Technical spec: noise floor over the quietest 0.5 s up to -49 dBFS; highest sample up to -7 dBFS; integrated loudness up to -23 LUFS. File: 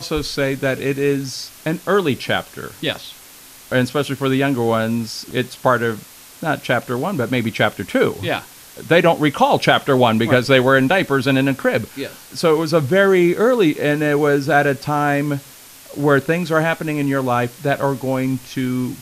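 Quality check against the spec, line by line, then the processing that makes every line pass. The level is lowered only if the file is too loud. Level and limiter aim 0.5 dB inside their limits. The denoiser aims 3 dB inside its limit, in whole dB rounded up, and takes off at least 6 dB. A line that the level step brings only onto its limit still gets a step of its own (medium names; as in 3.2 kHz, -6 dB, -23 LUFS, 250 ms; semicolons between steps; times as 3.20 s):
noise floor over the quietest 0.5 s -42 dBFS: fail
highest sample -1.5 dBFS: fail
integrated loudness -18.0 LUFS: fail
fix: noise reduction 6 dB, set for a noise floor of -42 dBFS; trim -5.5 dB; peak limiter -7.5 dBFS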